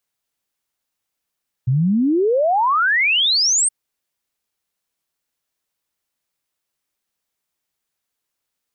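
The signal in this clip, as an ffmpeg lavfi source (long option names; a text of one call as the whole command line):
ffmpeg -f lavfi -i "aevalsrc='0.211*clip(min(t,2.02-t)/0.01,0,1)*sin(2*PI*120*2.02/log(8900/120)*(exp(log(8900/120)*t/2.02)-1))':duration=2.02:sample_rate=44100" out.wav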